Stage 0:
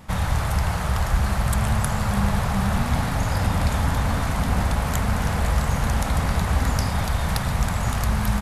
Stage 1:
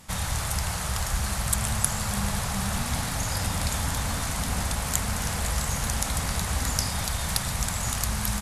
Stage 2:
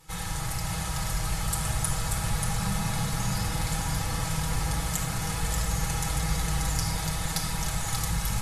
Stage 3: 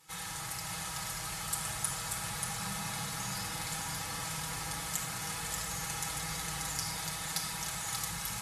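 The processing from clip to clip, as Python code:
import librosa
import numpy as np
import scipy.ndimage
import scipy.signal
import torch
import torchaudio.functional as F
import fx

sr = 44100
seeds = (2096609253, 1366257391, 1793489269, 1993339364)

y1 = fx.peak_eq(x, sr, hz=8400.0, db=15.0, octaves=2.5)
y1 = y1 * 10.0 ** (-7.5 / 20.0)
y2 = y1 + 0.72 * np.pad(y1, (int(6.2 * sr / 1000.0), 0))[:len(y1)]
y2 = y2 + 10.0 ** (-4.5 / 20.0) * np.pad(y2, (int(585 * sr / 1000.0), 0))[:len(y2)]
y2 = fx.room_shoebox(y2, sr, seeds[0], volume_m3=3600.0, walls='furnished', distance_m=4.1)
y2 = y2 * 10.0 ** (-8.5 / 20.0)
y3 = fx.highpass(y2, sr, hz=400.0, slope=6)
y3 = fx.peak_eq(y3, sr, hz=560.0, db=-4.0, octaves=1.4)
y3 = y3 * 10.0 ** (-3.5 / 20.0)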